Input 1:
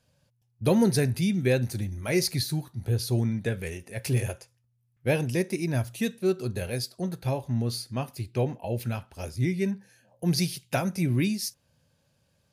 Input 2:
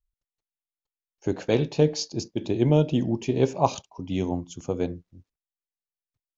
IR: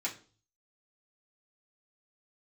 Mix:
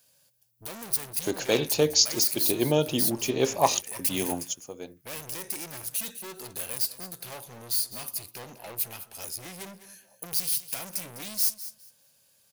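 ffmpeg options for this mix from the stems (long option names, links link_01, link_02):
-filter_complex "[0:a]alimiter=limit=-19.5dB:level=0:latency=1,aeval=exprs='(tanh(79.4*val(0)+0.4)-tanh(0.4))/79.4':channel_layout=same,volume=1.5dB,asplit=3[link_01][link_02][link_03];[link_02]volume=-14.5dB[link_04];[1:a]acontrast=22,volume=-3dB[link_05];[link_03]apad=whole_len=281146[link_06];[link_05][link_06]sidechaingate=range=-11dB:threshold=-58dB:ratio=16:detection=peak[link_07];[link_04]aecho=0:1:204|408|612:1|0.19|0.0361[link_08];[link_01][link_07][link_08]amix=inputs=3:normalize=0,aemphasis=mode=production:type=riaa"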